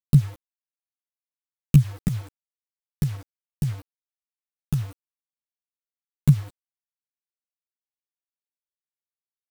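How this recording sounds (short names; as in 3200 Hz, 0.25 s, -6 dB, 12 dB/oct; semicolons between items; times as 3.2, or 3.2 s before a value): tremolo saw up 2 Hz, depth 40%; a quantiser's noise floor 8-bit, dither none; a shimmering, thickened sound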